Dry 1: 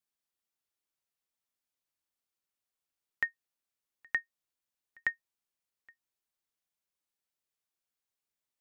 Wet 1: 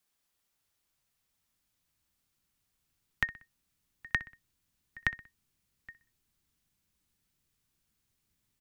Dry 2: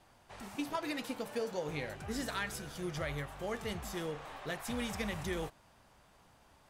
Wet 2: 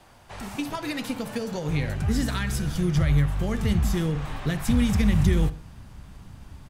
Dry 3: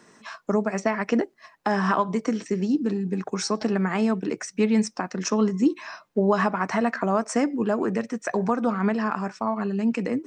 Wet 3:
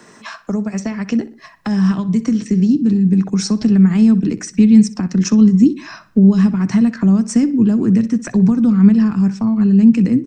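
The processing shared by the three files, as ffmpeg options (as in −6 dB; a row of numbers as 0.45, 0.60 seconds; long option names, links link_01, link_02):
-filter_complex "[0:a]acrossover=split=310|3000[link_01][link_02][link_03];[link_02]acompressor=threshold=-36dB:ratio=6[link_04];[link_01][link_04][link_03]amix=inputs=3:normalize=0,asplit=2[link_05][link_06];[link_06]adelay=62,lowpass=frequency=4700:poles=1,volume=-16.5dB,asplit=2[link_07][link_08];[link_08]adelay=62,lowpass=frequency=4700:poles=1,volume=0.39,asplit=2[link_09][link_10];[link_10]adelay=62,lowpass=frequency=4700:poles=1,volume=0.39[link_11];[link_05][link_07][link_09][link_11]amix=inputs=4:normalize=0,asplit=2[link_12][link_13];[link_13]acompressor=threshold=-39dB:ratio=6,volume=0dB[link_14];[link_12][link_14]amix=inputs=2:normalize=0,asubboost=boost=7.5:cutoff=210,volume=4dB"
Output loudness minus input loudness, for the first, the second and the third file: +1.0, +13.5, +11.0 LU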